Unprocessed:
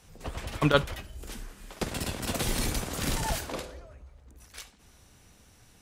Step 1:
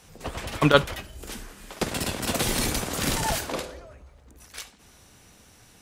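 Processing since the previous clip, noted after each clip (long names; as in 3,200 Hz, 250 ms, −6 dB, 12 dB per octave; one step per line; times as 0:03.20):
low-shelf EQ 97 Hz −8 dB
level +5.5 dB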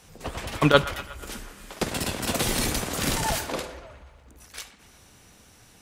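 delay with a band-pass on its return 121 ms, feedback 62%, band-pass 1,500 Hz, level −14 dB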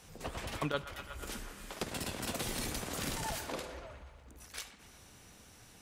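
downward compressor 2.5 to 1, threshold −35 dBFS, peak gain reduction 16 dB
level −3.5 dB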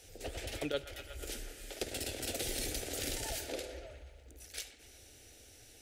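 phaser with its sweep stopped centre 440 Hz, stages 4
level +2 dB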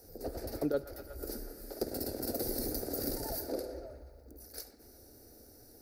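drawn EQ curve 110 Hz 0 dB, 200 Hz +9 dB, 1,400 Hz −1 dB, 3,200 Hz −27 dB, 4,600 Hz +1 dB, 7,300 Hz −12 dB, 14,000 Hz +10 dB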